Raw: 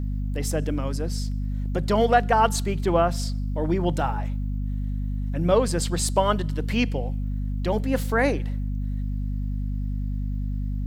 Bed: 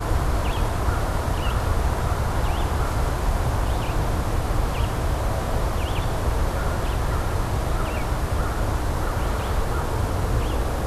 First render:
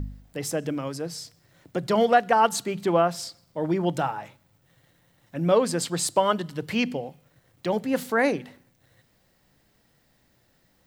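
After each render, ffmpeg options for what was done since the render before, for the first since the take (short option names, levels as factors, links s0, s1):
-af "bandreject=f=50:t=h:w=4,bandreject=f=100:t=h:w=4,bandreject=f=150:t=h:w=4,bandreject=f=200:t=h:w=4,bandreject=f=250:t=h:w=4"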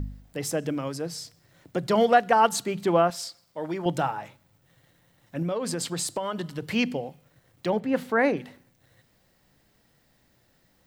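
-filter_complex "[0:a]asettb=1/sr,asplit=3[s0][s1][s2];[s0]atrim=end=3.104[s3];[s1]atrim=start=3.1:end=3.86,asetpts=PTS-STARTPTS,afade=t=in:d=0.004:c=qsin,afade=t=out:st=0.756:d=0.004:c=qsin,lowshelf=f=400:g=-11[s4];[s2]atrim=start=3.856[s5];[s3][s4]acrossfade=d=0.004:c1=hsin:c2=qsin[s6];[s6][s5]acrossfade=d=0.004:c1=qsin:c2=hsin,asettb=1/sr,asplit=3[s7][s8][s9];[s7]atrim=end=5.424[s10];[s8]atrim=start=5.42:end=6.68,asetpts=PTS-STARTPTS,afade=t=in:d=0.004:c=qsin,afade=t=out:st=1.256:d=0.004:c=qsin,acompressor=threshold=0.0562:ratio=6:attack=3.2:release=140:knee=1:detection=peak[s11];[s9]atrim=start=6.676[s12];[s10][s11]acrossfade=d=0.004:c1=hsin:c2=qsin[s13];[s13][s12]acrossfade=d=0.004:c1=qsin:c2=hsin,asettb=1/sr,asplit=3[s14][s15][s16];[s14]atrim=end=7.704[s17];[s15]atrim=start=7.7:end=8.37,asetpts=PTS-STARTPTS,afade=t=in:d=0.004:c=qsin,afade=t=out:st=0.666:d=0.004:c=qsin,bass=f=250:g=0,treble=f=4000:g=-12[s18];[s16]atrim=start=8.366[s19];[s17][s18]acrossfade=d=0.004:c1=hsin:c2=qsin[s20];[s20][s19]acrossfade=d=0.004:c1=qsin:c2=hsin"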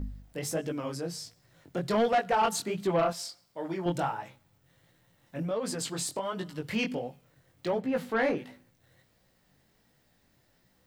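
-af "flanger=delay=15.5:depth=7.6:speed=1.4,asoftclip=type=tanh:threshold=0.112"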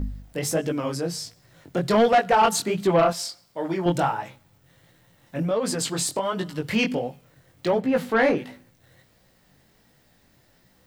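-af "volume=2.37"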